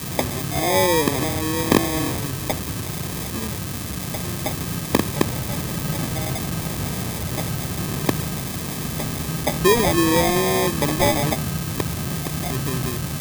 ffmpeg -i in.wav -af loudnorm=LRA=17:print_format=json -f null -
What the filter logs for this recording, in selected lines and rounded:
"input_i" : "-22.4",
"input_tp" : "-1.0",
"input_lra" : "5.0",
"input_thresh" : "-32.4",